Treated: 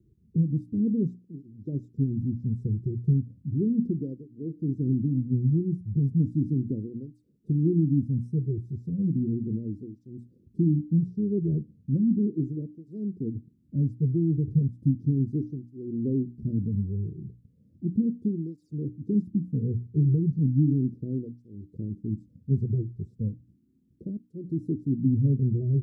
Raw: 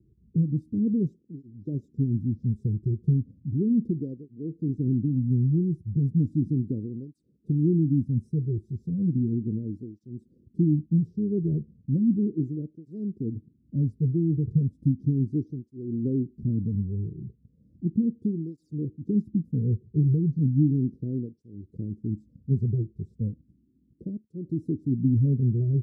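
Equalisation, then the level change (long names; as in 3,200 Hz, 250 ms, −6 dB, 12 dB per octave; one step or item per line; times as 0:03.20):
mains-hum notches 60/120/180/240/300 Hz
0.0 dB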